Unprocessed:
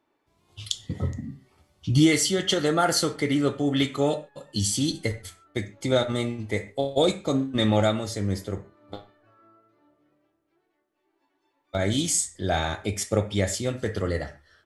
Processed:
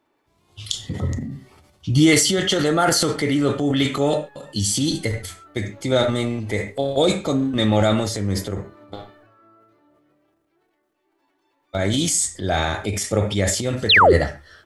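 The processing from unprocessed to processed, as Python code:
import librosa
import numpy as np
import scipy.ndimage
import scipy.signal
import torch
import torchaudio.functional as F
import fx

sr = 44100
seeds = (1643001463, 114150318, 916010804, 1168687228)

y = fx.spec_paint(x, sr, seeds[0], shape='fall', start_s=13.89, length_s=0.24, low_hz=320.0, high_hz=4500.0, level_db=-15.0)
y = fx.transient(y, sr, attack_db=-1, sustain_db=8)
y = y * librosa.db_to_amplitude(3.5)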